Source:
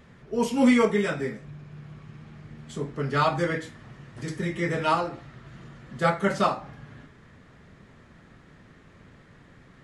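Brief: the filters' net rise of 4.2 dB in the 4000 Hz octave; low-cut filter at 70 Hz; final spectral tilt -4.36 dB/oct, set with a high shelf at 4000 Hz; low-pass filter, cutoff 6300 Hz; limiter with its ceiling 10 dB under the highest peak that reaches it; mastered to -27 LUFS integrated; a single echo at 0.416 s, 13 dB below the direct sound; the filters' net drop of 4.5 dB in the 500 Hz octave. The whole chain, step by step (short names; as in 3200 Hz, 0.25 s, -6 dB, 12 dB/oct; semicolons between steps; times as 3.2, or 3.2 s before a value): HPF 70 Hz; LPF 6300 Hz; bell 500 Hz -5.5 dB; high shelf 4000 Hz -3.5 dB; bell 4000 Hz +8 dB; limiter -19.5 dBFS; echo 0.416 s -13 dB; gain +4.5 dB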